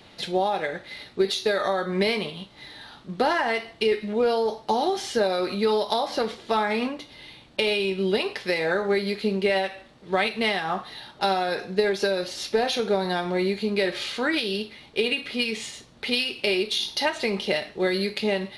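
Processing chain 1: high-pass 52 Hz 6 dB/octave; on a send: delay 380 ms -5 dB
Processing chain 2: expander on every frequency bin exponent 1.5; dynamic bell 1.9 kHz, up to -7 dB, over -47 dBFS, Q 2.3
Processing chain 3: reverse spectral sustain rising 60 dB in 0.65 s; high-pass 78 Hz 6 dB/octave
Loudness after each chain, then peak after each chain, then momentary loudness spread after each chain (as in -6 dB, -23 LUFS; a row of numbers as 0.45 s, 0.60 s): -24.5 LUFS, -29.0 LUFS, -23.5 LUFS; -8.5 dBFS, -12.0 dBFS, -6.5 dBFS; 5 LU, 8 LU, 8 LU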